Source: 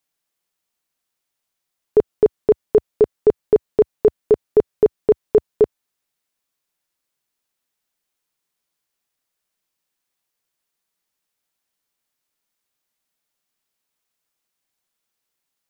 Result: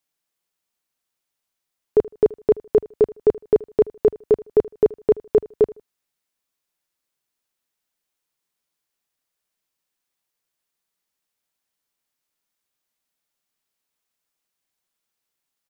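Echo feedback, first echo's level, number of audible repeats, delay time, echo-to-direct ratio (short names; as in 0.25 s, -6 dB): 28%, -21.5 dB, 2, 78 ms, -21.0 dB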